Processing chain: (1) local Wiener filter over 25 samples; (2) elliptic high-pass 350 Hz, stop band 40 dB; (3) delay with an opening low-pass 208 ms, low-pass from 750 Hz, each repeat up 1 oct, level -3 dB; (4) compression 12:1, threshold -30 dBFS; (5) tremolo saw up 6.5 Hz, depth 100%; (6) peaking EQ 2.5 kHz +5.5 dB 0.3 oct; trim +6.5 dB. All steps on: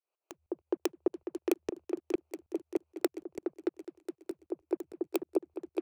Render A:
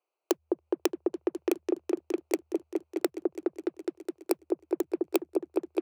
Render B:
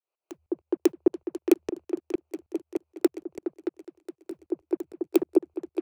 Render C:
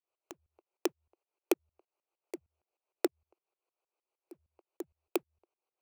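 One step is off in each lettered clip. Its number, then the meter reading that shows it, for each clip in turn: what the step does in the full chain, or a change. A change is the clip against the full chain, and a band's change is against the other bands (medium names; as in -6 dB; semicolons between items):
5, 8 kHz band +1.5 dB; 4, mean gain reduction 5.0 dB; 3, momentary loudness spread change +10 LU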